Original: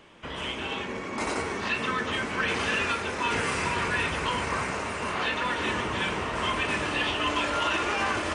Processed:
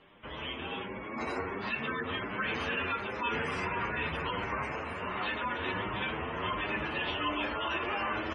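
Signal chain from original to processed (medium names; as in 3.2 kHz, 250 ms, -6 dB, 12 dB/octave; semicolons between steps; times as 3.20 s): spectral gate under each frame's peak -20 dB strong; distance through air 63 m; endless flanger 8.3 ms +1.4 Hz; trim -2 dB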